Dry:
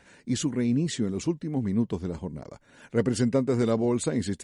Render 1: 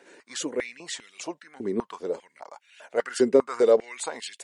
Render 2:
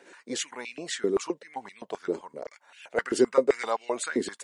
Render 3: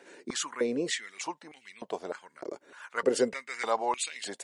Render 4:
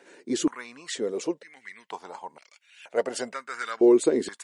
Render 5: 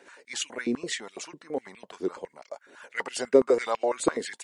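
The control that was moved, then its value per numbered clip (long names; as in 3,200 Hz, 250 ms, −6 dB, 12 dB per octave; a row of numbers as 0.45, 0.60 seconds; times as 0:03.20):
high-pass on a step sequencer, speed: 5, 7.7, 3.3, 2.1, 12 Hertz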